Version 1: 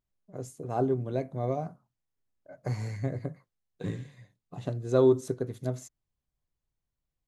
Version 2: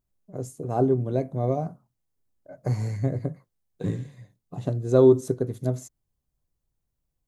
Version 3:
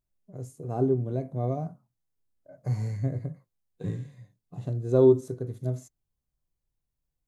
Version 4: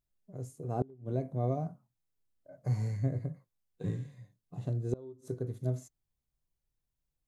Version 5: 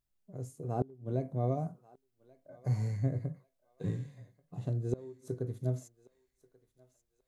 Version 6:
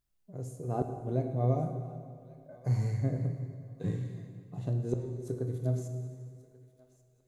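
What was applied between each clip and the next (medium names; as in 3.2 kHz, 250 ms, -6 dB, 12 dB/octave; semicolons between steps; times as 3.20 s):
peaking EQ 2.4 kHz -7.5 dB 2.8 oct; trim +6.5 dB
harmonic-percussive split percussive -9 dB; trim -2 dB
inverted gate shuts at -16 dBFS, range -27 dB; trim -2.5 dB
thinning echo 1135 ms, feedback 41%, high-pass 910 Hz, level -19 dB
reverberation RT60 2.1 s, pre-delay 5 ms, DRR 5.5 dB; trim +1.5 dB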